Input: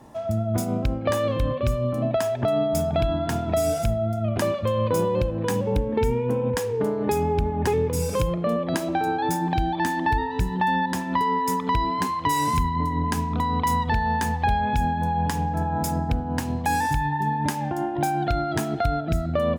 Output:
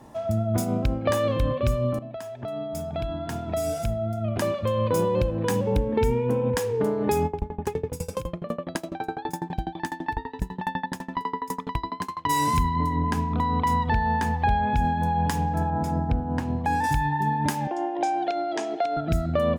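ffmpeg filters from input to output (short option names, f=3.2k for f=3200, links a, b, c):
-filter_complex "[0:a]asplit=3[a][b][c];[a]afade=t=out:st=7.26:d=0.02[d];[b]aeval=exprs='val(0)*pow(10,-25*if(lt(mod(12*n/s,1),2*abs(12)/1000),1-mod(12*n/s,1)/(2*abs(12)/1000),(mod(12*n/s,1)-2*abs(12)/1000)/(1-2*abs(12)/1000))/20)':c=same,afade=t=in:st=7.26:d=0.02,afade=t=out:st=12.28:d=0.02[e];[c]afade=t=in:st=12.28:d=0.02[f];[d][e][f]amix=inputs=3:normalize=0,asettb=1/sr,asplit=3[g][h][i];[g]atrim=end=12.964[j];[h]atrim=start=12.96:end=14.85,asetpts=PTS-STARTPTS,afade=t=in:d=0.004:c=qsin,afade=t=out:st=1.886:d=0.004:c=qsin,highshelf=f=4.6k:g=-10.5[k];[i]atrim=start=14.846[l];[j][k]acrossfade=d=0.004:c1=hsin:c2=qsin[m];[m][l]acrossfade=d=0.004:c1=qsin:c2=hsin,asettb=1/sr,asplit=3[n][o][p];[n]atrim=end=15.704[q];[o]atrim=start=15.7:end=16.84,asetpts=PTS-STARTPTS,afade=t=in:d=0.004:c=qsin,afade=t=out:st=1.136:d=0.004:c=qsin,lowpass=f=1.5k:p=1[r];[p]atrim=start=16.836[s];[q][r]acrossfade=d=0.004:c1=hsin:c2=qsin[t];[t][s]acrossfade=d=0.004:c1=qsin:c2=hsin,asettb=1/sr,asplit=3[u][v][w];[u]atrim=end=17.674[x];[v]atrim=start=17.67:end=18.97,asetpts=PTS-STARTPTS,afade=t=in:d=0.004:c=qsin,afade=t=out:st=1.296:d=0.004:c=qsin,highpass=f=330:w=0.5412,highpass=f=330:w=1.3066,equalizer=f=580:t=q:w=4:g=4,equalizer=f=1.4k:t=q:w=4:g=-10,equalizer=f=4.1k:t=q:w=4:g=-4,lowpass=f=6.8k:w=0.5412,lowpass=f=6.8k:w=1.3066[y];[w]atrim=start=18.966[z];[x][y]acrossfade=d=0.004:c1=hsin:c2=qsin[aa];[aa][z]acrossfade=d=0.004:c1=qsin:c2=hsin,asplit=2[ab][ac];[ab]atrim=end=1.99,asetpts=PTS-STARTPTS,afade=t=out:st=1.986:d=0.004:c=hsin:silence=0.177828[ad];[ac]atrim=start=1.99,asetpts=PTS-STARTPTS,afade=t=in:d=3.25:silence=0.177828[ae];[ad][ae]concat=n=2:v=0:a=1"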